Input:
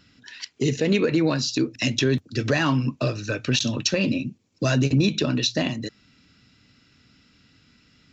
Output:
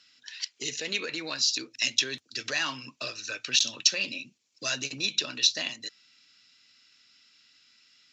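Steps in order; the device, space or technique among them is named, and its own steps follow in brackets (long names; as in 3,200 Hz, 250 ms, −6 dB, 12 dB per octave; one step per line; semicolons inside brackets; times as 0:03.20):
piezo pickup straight into a mixer (low-pass filter 5,900 Hz 12 dB per octave; first difference)
level +7.5 dB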